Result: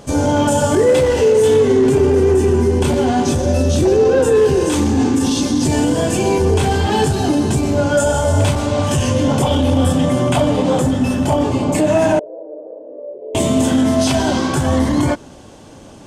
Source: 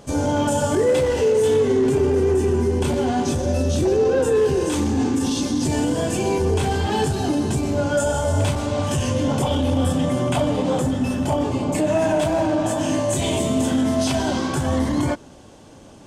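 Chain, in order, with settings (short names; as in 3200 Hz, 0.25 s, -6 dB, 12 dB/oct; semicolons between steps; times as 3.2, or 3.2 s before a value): 12.19–13.35 Butterworth band-pass 470 Hz, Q 4.6; gain +5.5 dB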